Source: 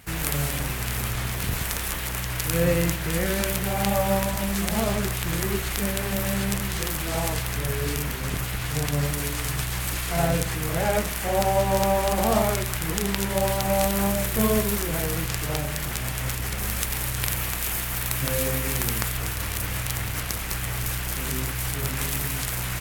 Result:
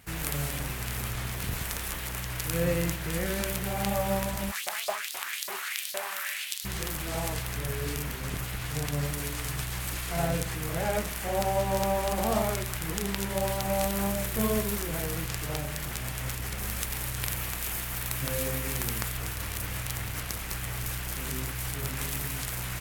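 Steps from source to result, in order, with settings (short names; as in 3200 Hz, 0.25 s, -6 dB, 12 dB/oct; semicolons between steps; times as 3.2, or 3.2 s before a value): 4.5–6.64 LFO high-pass saw up 5.8 Hz -> 1 Hz 580–4800 Hz; gain -5.5 dB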